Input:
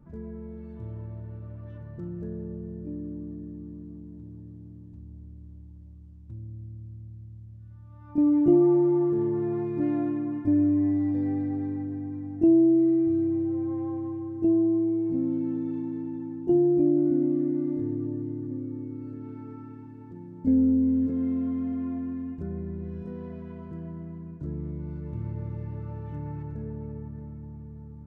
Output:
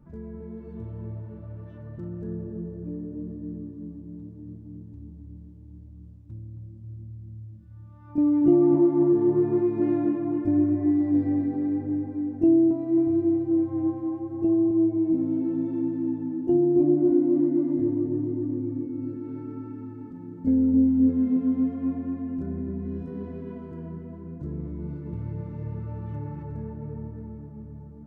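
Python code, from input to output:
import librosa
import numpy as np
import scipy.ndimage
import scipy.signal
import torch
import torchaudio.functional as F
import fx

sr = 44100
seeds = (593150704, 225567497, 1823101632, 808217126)

y = fx.echo_tape(x, sr, ms=267, feedback_pct=77, wet_db=-3.5, lp_hz=1000.0, drive_db=9.0, wow_cents=38)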